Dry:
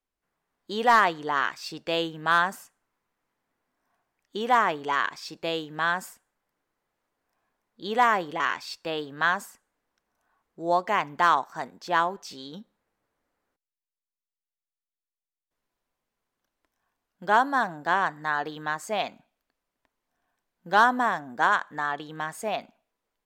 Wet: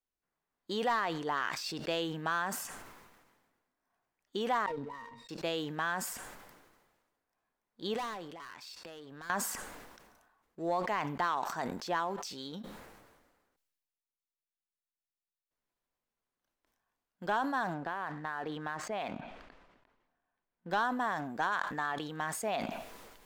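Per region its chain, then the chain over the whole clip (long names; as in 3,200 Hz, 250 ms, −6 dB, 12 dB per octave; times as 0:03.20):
0:04.66–0:05.29: head-to-tape spacing loss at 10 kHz 26 dB + resonances in every octave A#, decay 0.13 s + windowed peak hold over 3 samples
0:07.94–0:09.30: high-pass filter 50 Hz + hard clipping −24 dBFS + downward compressor 12 to 1, threshold −42 dBFS
0:17.74–0:20.71: low-pass filter 2,800 Hz + downward compressor, threshold −30 dBFS
whole clip: downward compressor 2.5 to 1, threshold −29 dBFS; leveller curve on the samples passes 1; level that may fall only so fast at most 40 dB per second; level −6 dB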